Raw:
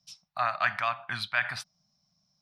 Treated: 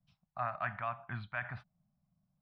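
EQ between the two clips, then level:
high-frequency loss of the air 500 metres
spectral tilt −2.5 dB per octave
−5.5 dB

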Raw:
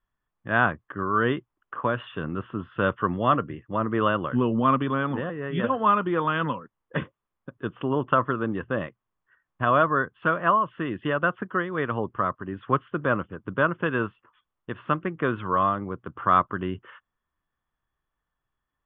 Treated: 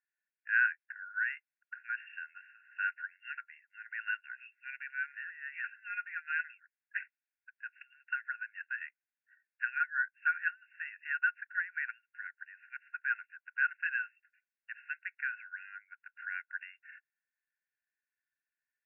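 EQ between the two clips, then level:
linear-phase brick-wall band-pass 1,400–2,800 Hz
−2.5 dB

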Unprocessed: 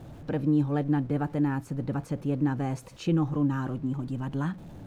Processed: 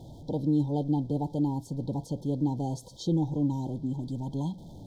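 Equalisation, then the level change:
linear-phase brick-wall band-stop 1,000–3,100 Hz
parametric band 4,800 Hz +7 dB 1.1 octaves
−1.5 dB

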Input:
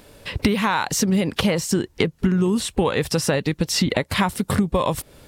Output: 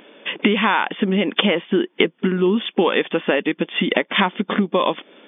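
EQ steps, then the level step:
linear-phase brick-wall band-pass 180–3,600 Hz
parametric band 350 Hz +4.5 dB 0.41 octaves
high-shelf EQ 2,700 Hz +11 dB
+1.5 dB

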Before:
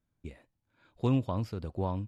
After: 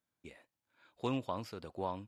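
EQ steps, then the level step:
high-pass filter 680 Hz 6 dB per octave
+1.0 dB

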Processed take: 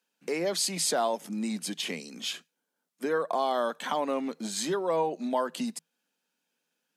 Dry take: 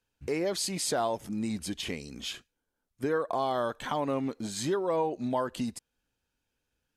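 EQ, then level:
Chebyshev high-pass with heavy ripple 160 Hz, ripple 3 dB
tilt shelving filter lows −3 dB, about 1,400 Hz
+4.0 dB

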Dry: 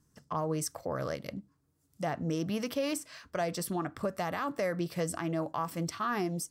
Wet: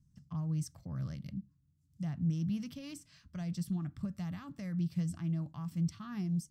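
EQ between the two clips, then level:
drawn EQ curve 180 Hz 0 dB, 460 Hz −29 dB, 810 Hz −24 dB, 1,700 Hz −21 dB, 3,200 Hz −15 dB, 6,900 Hz −15 dB, 10,000 Hz −20 dB
+4.0 dB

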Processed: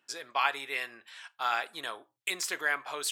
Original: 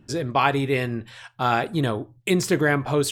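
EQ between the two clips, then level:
high-pass filter 1,100 Hz 12 dB per octave
−4.0 dB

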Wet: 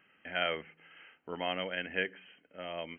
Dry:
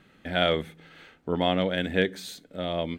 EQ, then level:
linear-phase brick-wall low-pass 3,200 Hz
spectral tilt +4 dB per octave
−7.5 dB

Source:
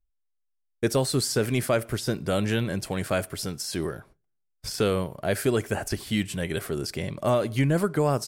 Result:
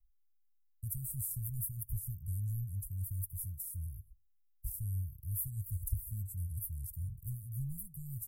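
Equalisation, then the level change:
inverse Chebyshev band-stop filter 330–3,900 Hz, stop band 70 dB
+6.0 dB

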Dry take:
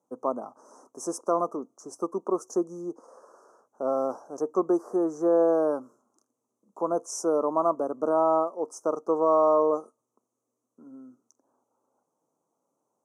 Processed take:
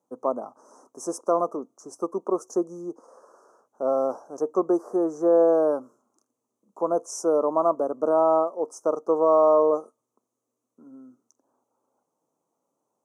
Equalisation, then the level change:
dynamic equaliser 560 Hz, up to +4 dB, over −36 dBFS, Q 1.4
0.0 dB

